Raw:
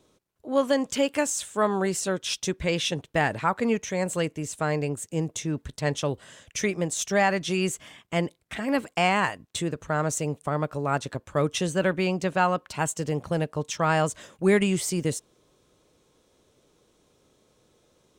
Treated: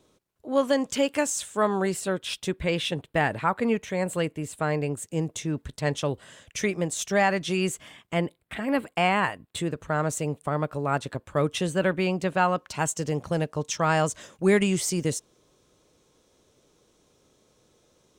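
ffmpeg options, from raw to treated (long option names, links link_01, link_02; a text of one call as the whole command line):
ffmpeg -i in.wav -af "asetnsamples=nb_out_samples=441:pad=0,asendcmd='1.94 equalizer g -10.5;4.89 equalizer g -3;8.14 equalizer g -14.5;9.57 equalizer g -5.5;12.56 equalizer g 3.5',equalizer=frequency=6000:width_type=o:width=0.58:gain=-0.5" out.wav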